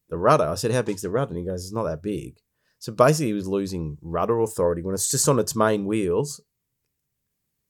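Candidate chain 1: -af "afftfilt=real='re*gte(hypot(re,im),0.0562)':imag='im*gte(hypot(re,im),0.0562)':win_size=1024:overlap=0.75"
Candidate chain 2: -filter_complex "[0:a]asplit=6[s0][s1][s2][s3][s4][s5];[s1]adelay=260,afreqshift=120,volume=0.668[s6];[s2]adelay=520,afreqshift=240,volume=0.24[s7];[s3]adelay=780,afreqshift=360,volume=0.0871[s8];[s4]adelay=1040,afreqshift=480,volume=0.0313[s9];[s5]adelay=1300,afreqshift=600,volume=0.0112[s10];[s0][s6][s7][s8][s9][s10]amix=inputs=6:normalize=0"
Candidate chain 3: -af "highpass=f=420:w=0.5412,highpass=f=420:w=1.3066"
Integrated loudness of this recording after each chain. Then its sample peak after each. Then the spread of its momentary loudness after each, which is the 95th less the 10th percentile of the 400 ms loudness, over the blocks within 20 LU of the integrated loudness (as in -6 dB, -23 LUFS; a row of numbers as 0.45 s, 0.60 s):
-23.5 LUFS, -22.0 LUFS, -25.0 LUFS; -2.5 dBFS, -3.0 dBFS, -3.0 dBFS; 12 LU, 14 LU, 18 LU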